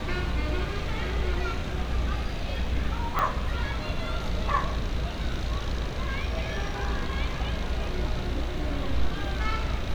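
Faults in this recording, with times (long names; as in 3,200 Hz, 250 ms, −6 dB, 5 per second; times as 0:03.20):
0:03.19: click −12 dBFS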